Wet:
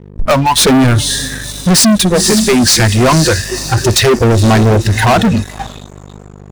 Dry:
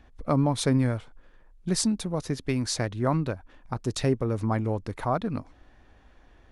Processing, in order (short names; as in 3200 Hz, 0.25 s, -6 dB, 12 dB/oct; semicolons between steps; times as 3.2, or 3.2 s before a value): diffused feedback echo 0.51 s, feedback 44%, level -10 dB; spectral noise reduction 24 dB; hum 50 Hz, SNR 25 dB; in parallel at -6 dB: hard clip -26.5 dBFS, distortion -10 dB; on the sum: sample leveller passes 5; gain +8 dB